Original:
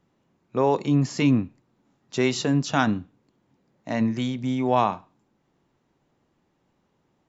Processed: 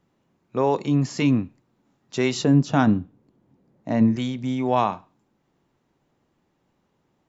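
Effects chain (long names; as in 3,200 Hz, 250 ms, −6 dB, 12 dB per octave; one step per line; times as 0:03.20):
0:02.44–0:04.16: tilt shelving filter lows +6 dB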